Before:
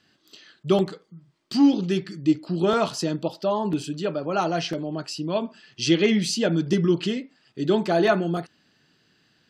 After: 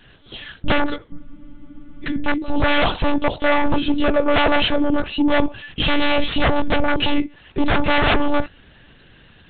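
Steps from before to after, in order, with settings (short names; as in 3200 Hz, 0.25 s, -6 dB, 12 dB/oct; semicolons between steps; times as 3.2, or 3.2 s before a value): low shelf 62 Hz +4 dB; in parallel at -4 dB: sine folder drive 19 dB, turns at -5 dBFS; on the sum: vibrato 0.69 Hz 6.8 cents; monotone LPC vocoder at 8 kHz 290 Hz; spectral freeze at 1.2, 0.83 s; gain -4 dB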